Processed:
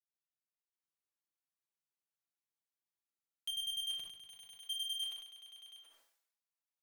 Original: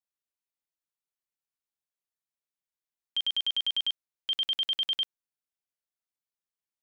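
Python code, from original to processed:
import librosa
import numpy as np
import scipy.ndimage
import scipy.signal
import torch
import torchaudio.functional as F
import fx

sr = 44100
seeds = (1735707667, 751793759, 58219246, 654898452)

y = fx.tube_stage(x, sr, drive_db=35.0, bias=0.35)
y = fx.highpass(y, sr, hz=fx.steps((0.0, 68.0), (3.84, 450.0)), slope=24)
y = y + 10.0 ** (-5.5 / 20.0) * np.pad(y, (int(730 * sr / 1000.0), 0))[:len(y)]
y = fx.level_steps(y, sr, step_db=19)
y = y + 0.6 * np.pad(y, (int(6.0 * sr / 1000.0), 0))[:len(y)]
y = fx.leveller(y, sr, passes=1)
y = fx.rev_plate(y, sr, seeds[0], rt60_s=0.83, hf_ratio=0.45, predelay_ms=0, drr_db=5.0)
y = fx.buffer_glitch(y, sr, at_s=(3.01,), block=2048, repeats=9)
y = fx.sustainer(y, sr, db_per_s=69.0)
y = y * librosa.db_to_amplitude(-4.5)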